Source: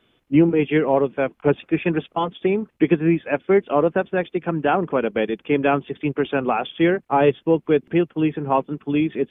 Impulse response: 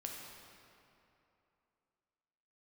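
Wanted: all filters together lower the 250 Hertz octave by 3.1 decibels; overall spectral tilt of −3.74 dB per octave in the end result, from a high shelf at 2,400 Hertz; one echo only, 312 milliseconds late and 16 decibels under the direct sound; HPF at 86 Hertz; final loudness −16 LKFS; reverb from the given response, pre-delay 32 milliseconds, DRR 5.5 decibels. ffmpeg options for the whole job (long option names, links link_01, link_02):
-filter_complex "[0:a]highpass=86,equalizer=frequency=250:width_type=o:gain=-4.5,highshelf=frequency=2400:gain=-4,aecho=1:1:312:0.158,asplit=2[link_01][link_02];[1:a]atrim=start_sample=2205,adelay=32[link_03];[link_02][link_03]afir=irnorm=-1:irlink=0,volume=-4dB[link_04];[link_01][link_04]amix=inputs=2:normalize=0,volume=5.5dB"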